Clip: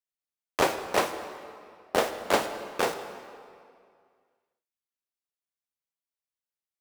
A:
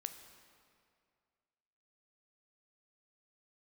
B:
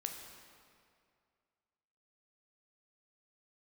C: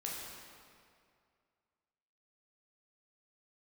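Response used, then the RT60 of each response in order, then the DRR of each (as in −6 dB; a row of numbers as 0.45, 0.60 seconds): A; 2.2, 2.3, 2.3 seconds; 7.5, 3.0, −4.0 decibels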